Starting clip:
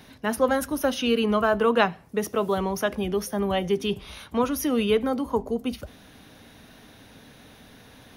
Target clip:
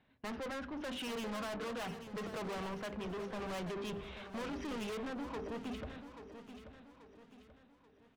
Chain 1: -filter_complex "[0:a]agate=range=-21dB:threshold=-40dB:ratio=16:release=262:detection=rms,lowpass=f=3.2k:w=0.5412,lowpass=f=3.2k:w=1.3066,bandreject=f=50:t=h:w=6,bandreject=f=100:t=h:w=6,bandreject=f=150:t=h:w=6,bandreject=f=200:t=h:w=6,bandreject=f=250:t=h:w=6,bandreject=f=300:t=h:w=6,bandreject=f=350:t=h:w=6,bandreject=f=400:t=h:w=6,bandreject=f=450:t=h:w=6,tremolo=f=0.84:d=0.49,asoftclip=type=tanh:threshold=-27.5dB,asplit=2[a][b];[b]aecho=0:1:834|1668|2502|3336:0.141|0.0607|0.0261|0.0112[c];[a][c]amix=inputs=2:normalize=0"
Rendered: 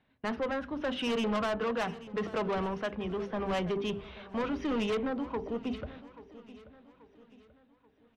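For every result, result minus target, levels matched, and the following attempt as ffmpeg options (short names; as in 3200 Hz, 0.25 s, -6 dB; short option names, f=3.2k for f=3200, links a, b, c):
echo-to-direct -6.5 dB; soft clip: distortion -6 dB
-filter_complex "[0:a]agate=range=-21dB:threshold=-40dB:ratio=16:release=262:detection=rms,lowpass=f=3.2k:w=0.5412,lowpass=f=3.2k:w=1.3066,bandreject=f=50:t=h:w=6,bandreject=f=100:t=h:w=6,bandreject=f=150:t=h:w=6,bandreject=f=200:t=h:w=6,bandreject=f=250:t=h:w=6,bandreject=f=300:t=h:w=6,bandreject=f=350:t=h:w=6,bandreject=f=400:t=h:w=6,bandreject=f=450:t=h:w=6,tremolo=f=0.84:d=0.49,asoftclip=type=tanh:threshold=-27.5dB,asplit=2[a][b];[b]aecho=0:1:834|1668|2502|3336|4170:0.299|0.128|0.0552|0.0237|0.0102[c];[a][c]amix=inputs=2:normalize=0"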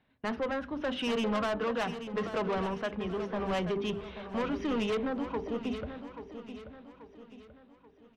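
soft clip: distortion -6 dB
-filter_complex "[0:a]agate=range=-21dB:threshold=-40dB:ratio=16:release=262:detection=rms,lowpass=f=3.2k:w=0.5412,lowpass=f=3.2k:w=1.3066,bandreject=f=50:t=h:w=6,bandreject=f=100:t=h:w=6,bandreject=f=150:t=h:w=6,bandreject=f=200:t=h:w=6,bandreject=f=250:t=h:w=6,bandreject=f=300:t=h:w=6,bandreject=f=350:t=h:w=6,bandreject=f=400:t=h:w=6,bandreject=f=450:t=h:w=6,tremolo=f=0.84:d=0.49,asoftclip=type=tanh:threshold=-39.5dB,asplit=2[a][b];[b]aecho=0:1:834|1668|2502|3336|4170:0.299|0.128|0.0552|0.0237|0.0102[c];[a][c]amix=inputs=2:normalize=0"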